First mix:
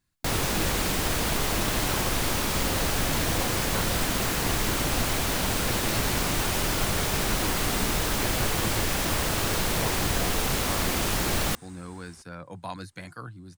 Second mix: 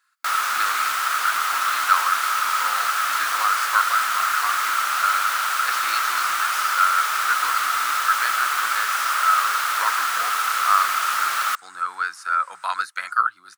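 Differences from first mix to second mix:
speech +9.0 dB
second sound: entry +0.60 s
master: add high-pass with resonance 1,300 Hz, resonance Q 9.6

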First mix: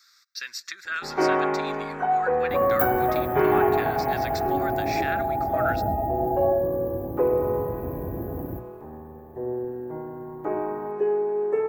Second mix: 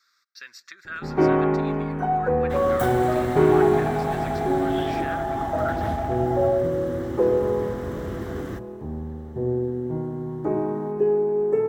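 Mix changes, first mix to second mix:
first sound: remove three-way crossover with the lows and the highs turned down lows −14 dB, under 380 Hz, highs −16 dB, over 2,600 Hz
second sound: remove linear-phase brick-wall band-stop 890–12,000 Hz
master: add high-shelf EQ 2,000 Hz −12 dB

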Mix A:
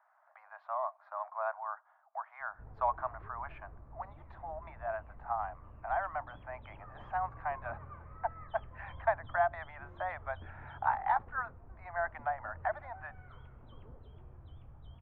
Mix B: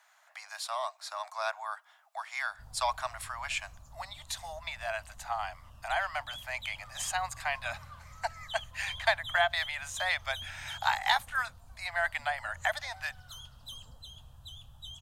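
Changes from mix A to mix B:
background: add phaser with its sweep stopped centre 920 Hz, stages 4
master: remove low-pass filter 1,300 Hz 24 dB per octave

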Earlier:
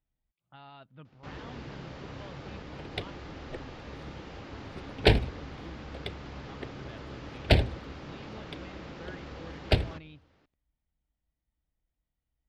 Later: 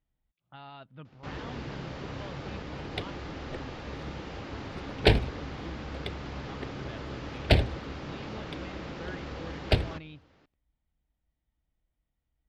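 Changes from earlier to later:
speech +3.5 dB
first sound +4.0 dB

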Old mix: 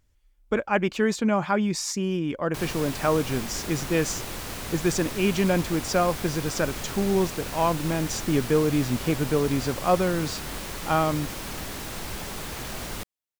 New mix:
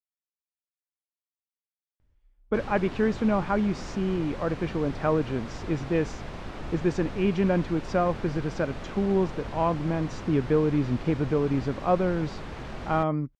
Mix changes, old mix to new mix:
speech: entry +2.00 s
master: add head-to-tape spacing loss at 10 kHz 29 dB

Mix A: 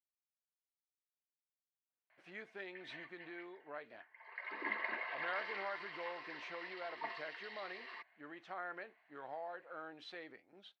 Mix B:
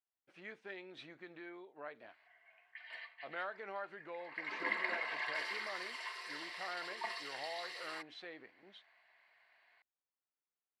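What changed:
speech: entry −1.90 s
background: remove high-frequency loss of the air 310 metres

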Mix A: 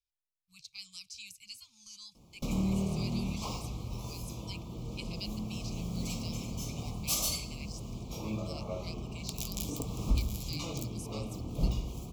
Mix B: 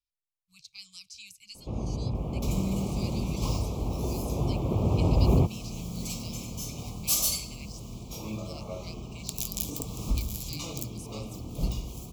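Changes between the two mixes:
first sound: unmuted
second sound: add high-shelf EQ 5,600 Hz +9 dB

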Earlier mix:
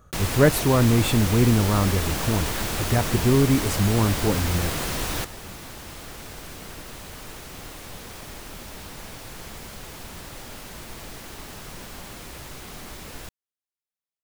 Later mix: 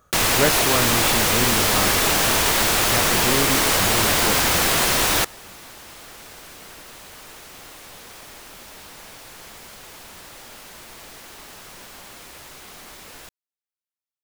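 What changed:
first sound +11.5 dB
master: add low-shelf EQ 290 Hz −12 dB

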